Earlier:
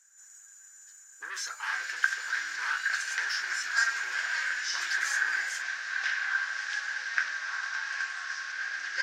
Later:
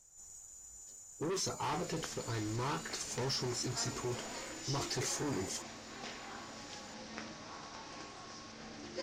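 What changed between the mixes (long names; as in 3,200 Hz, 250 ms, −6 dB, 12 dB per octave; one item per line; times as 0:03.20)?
background −7.5 dB
master: remove high-pass with resonance 1,600 Hz, resonance Q 14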